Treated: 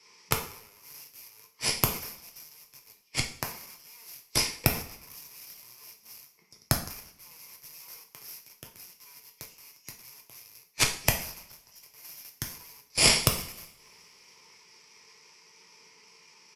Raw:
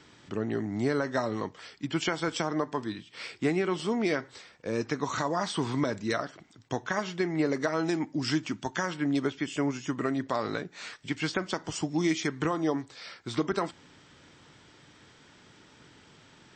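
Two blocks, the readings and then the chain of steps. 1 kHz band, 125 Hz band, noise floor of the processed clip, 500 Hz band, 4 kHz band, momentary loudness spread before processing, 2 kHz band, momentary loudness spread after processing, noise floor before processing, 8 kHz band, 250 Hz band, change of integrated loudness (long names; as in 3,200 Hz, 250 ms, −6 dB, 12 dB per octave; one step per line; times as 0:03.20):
−5.5 dB, −1.0 dB, −62 dBFS, −11.0 dB, +7.0 dB, 9 LU, −1.0 dB, 22 LU, −57 dBFS, +11.0 dB, −13.5 dB, +3.0 dB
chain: wrap-around overflow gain 29 dB
EQ curve with evenly spaced ripples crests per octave 0.83, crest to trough 17 dB
gate with flip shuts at −27 dBFS, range −25 dB
RIAA equalisation recording
harmonic generator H 8 −7 dB, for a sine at −10 dBFS
coupled-rooms reverb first 0.56 s, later 4.2 s, from −18 dB, DRR 2.5 dB
downsampling to 32,000 Hz
multiband upward and downward expander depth 100%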